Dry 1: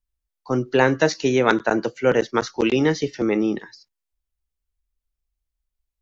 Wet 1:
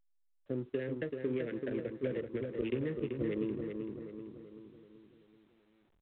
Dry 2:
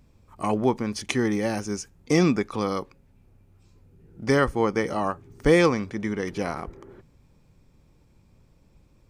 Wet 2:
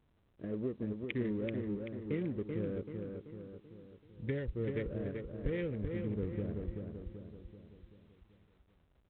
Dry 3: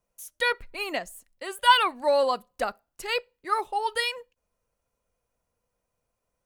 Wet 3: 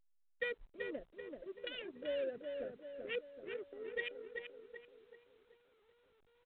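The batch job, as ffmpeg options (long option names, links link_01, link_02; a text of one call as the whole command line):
ffmpeg -i in.wav -filter_complex "[0:a]highpass=frequency=66:poles=1,aemphasis=mode=reproduction:type=50fm,afwtdn=0.0282,asubboost=boost=6:cutoff=98,acrossover=split=660|1000[link_01][link_02][link_03];[link_02]alimiter=level_in=2.5dB:limit=-24dB:level=0:latency=1:release=307,volume=-2.5dB[link_04];[link_01][link_04][link_03]amix=inputs=3:normalize=0,acompressor=threshold=-23dB:ratio=16,asuperstop=centerf=1000:order=8:qfactor=0.84,aecho=1:1:384|768|1152|1536|1920|2304:0.562|0.287|0.146|0.0746|0.038|0.0194,adynamicsmooth=sensitivity=5.5:basefreq=580,volume=-8dB" -ar 8000 -c:a pcm_alaw out.wav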